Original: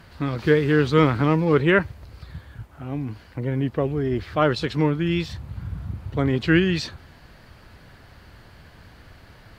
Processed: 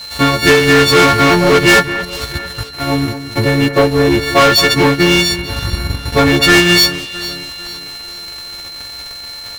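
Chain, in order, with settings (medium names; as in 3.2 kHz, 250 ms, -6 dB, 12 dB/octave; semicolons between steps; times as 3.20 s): partials quantised in pitch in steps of 4 st; peaking EQ 170 Hz -7 dB 1.5 oct; waveshaping leveller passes 5; whistle 4.1 kHz -26 dBFS; transient shaper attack +3 dB, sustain -10 dB; echo whose repeats swap between lows and highs 223 ms, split 2.4 kHz, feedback 65%, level -11 dB; trim -1 dB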